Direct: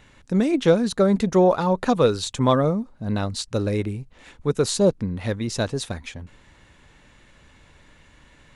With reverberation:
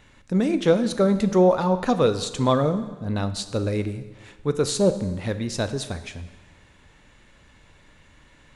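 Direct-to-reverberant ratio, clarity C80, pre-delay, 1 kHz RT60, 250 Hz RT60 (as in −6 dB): 10.0 dB, 14.0 dB, 6 ms, 1.3 s, 1.2 s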